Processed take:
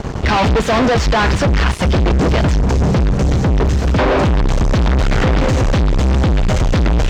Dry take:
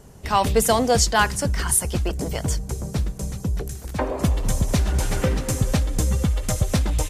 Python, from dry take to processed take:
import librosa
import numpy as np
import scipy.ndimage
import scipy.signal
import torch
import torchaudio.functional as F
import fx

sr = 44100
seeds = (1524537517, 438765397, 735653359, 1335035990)

y = fx.fuzz(x, sr, gain_db=41.0, gate_db=-48.0)
y = fx.air_absorb(y, sr, metres=180.0)
y = F.gain(torch.from_numpy(y), 2.0).numpy()